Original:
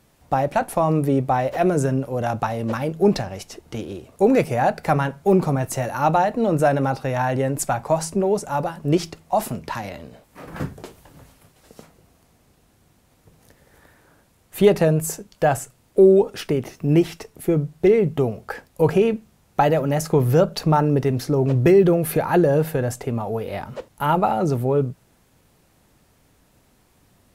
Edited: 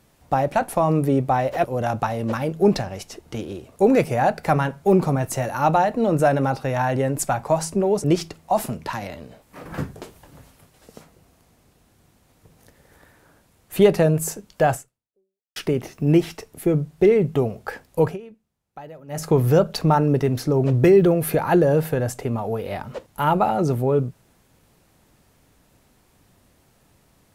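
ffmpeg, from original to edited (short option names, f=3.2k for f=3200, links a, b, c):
-filter_complex "[0:a]asplit=6[a][b][c][d][e][f];[a]atrim=end=1.642[g];[b]atrim=start=2.038:end=8.442[h];[c]atrim=start=8.858:end=16.38,asetpts=PTS-STARTPTS,afade=t=out:st=6.702:d=0.82:c=exp[i];[d]atrim=start=16.38:end=19,asetpts=PTS-STARTPTS,afade=t=in:d=0.004:c=hsin,afade=t=out:st=2.44:d=0.18:silence=0.0841395[j];[e]atrim=start=19:end=19.9,asetpts=PTS-STARTPTS,volume=-21.5dB[k];[f]atrim=start=19.9,asetpts=PTS-STARTPTS,afade=t=in:d=0.18:silence=0.0841395[l];[g][h]acrossfade=d=0.004:c1=hsin:c2=hsin[m];[i][j][k][l]concat=n=4:v=0:a=1[n];[m][n]acrossfade=d=0.004:c1=hsin:c2=hsin"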